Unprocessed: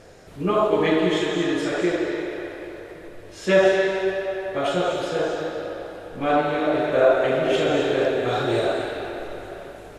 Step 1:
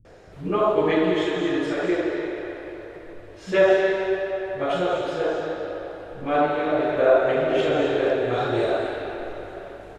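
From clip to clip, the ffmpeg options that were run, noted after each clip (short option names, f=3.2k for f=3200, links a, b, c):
-filter_complex "[0:a]lowpass=f=2.8k:p=1,acrossover=split=180[a][b];[b]adelay=50[c];[a][c]amix=inputs=2:normalize=0"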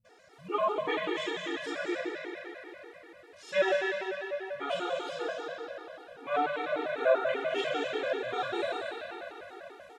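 -af "highpass=f=1.1k:p=1,afftfilt=real='re*gt(sin(2*PI*5.1*pts/sr)*(1-2*mod(floor(b*sr/1024/240),2)),0)':imag='im*gt(sin(2*PI*5.1*pts/sr)*(1-2*mod(floor(b*sr/1024/240),2)),0)':win_size=1024:overlap=0.75"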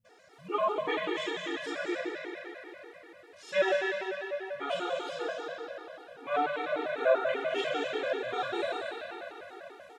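-af "lowshelf=f=67:g=-8"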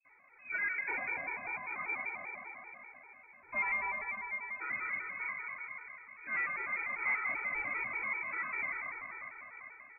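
-filter_complex "[0:a]acrossover=split=230[a][b];[b]asoftclip=type=tanh:threshold=-25dB[c];[a][c]amix=inputs=2:normalize=0,lowpass=f=2.3k:t=q:w=0.5098,lowpass=f=2.3k:t=q:w=0.6013,lowpass=f=2.3k:t=q:w=0.9,lowpass=f=2.3k:t=q:w=2.563,afreqshift=-2700,volume=-3.5dB"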